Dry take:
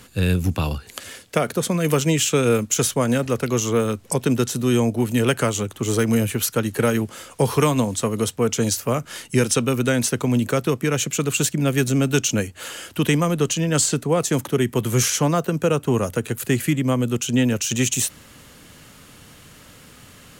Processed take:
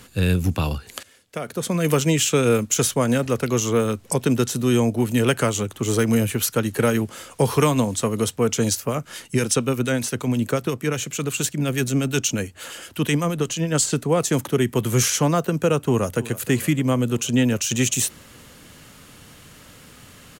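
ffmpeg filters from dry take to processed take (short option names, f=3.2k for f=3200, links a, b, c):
-filter_complex "[0:a]asettb=1/sr,asplit=3[a][b][c];[a]atrim=end=8.754[d];[b]atrim=start=8.75:end=13.93,asetpts=PTS-STARTPTS,afade=t=in:d=0.004:c=qsin,afade=t=out:st=5.176:d=0.004:c=qsin,acrossover=split=1700[e][f];[e]aeval=exprs='val(0)*(1-0.5/2+0.5/2*cos(2*PI*8.4*n/s))':c=same[g];[f]aeval=exprs='val(0)*(1-0.5/2-0.5/2*cos(2*PI*8.4*n/s))':c=same[h];[g][h]amix=inputs=2:normalize=0[i];[c]atrim=start=13.926[j];[d][i]acrossfade=d=0.004:c1=hsin:c2=qsin[k];[k][j]acrossfade=d=0.004:c1=qsin:c2=hsin,asplit=2[l][m];[m]afade=t=in:st=15.82:d=0.01,afade=t=out:st=16.31:d=0.01,aecho=0:1:310|620|930|1240|1550|1860|2170|2480:0.133352|0.0933465|0.0653426|0.0457398|0.0320178|0.0224125|0.0156887|0.0109821[n];[l][n]amix=inputs=2:normalize=0,asplit=2[o][p];[o]atrim=end=1.03,asetpts=PTS-STARTPTS,afade=t=out:st=1.026:d=0.004:c=hsin:silence=0.149624[q];[p]atrim=start=1.03,asetpts=PTS-STARTPTS,afade=t=in:d=0.76:c=qua:silence=0.149624[r];[q][r]concat=n=2:v=0:a=1"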